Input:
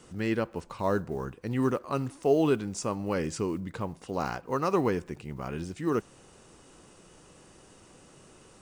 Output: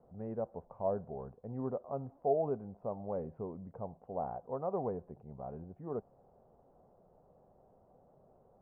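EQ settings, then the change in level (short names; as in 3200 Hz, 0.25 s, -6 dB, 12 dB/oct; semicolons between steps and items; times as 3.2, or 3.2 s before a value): ladder low-pass 790 Hz, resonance 60%; bell 320 Hz -12.5 dB 0.28 oct; 0.0 dB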